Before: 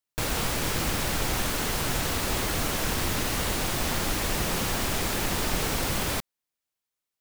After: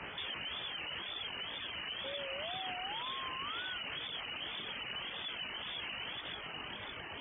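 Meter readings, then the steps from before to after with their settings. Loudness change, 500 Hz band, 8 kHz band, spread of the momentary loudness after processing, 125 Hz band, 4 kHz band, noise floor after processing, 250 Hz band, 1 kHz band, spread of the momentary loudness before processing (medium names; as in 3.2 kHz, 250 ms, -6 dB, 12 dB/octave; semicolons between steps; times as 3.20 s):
-12.5 dB, -15.0 dB, under -40 dB, 3 LU, -25.0 dB, -5.5 dB, -46 dBFS, -22.0 dB, -12.0 dB, 0 LU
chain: one-bit comparator; on a send: two-band feedback delay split 390 Hz, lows 550 ms, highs 131 ms, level -9 dB; on the sum: chorus 0.52 Hz, delay 17.5 ms, depth 3.5 ms; frequency inversion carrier 3.2 kHz; peak limiter -28 dBFS, peak gain reduction 7.5 dB; high-pass 51 Hz; reverb removal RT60 0.65 s; painted sound rise, 2.03–3.78 s, 490–1500 Hz -41 dBFS; wow and flutter 150 cents; trim -4 dB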